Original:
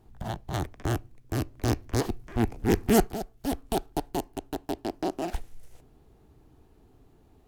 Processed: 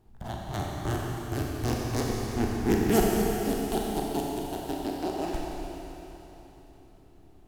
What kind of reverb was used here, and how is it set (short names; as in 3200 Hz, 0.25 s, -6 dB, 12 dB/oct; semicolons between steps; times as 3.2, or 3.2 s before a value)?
Schroeder reverb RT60 3.6 s, combs from 29 ms, DRR -2.5 dB; gain -3.5 dB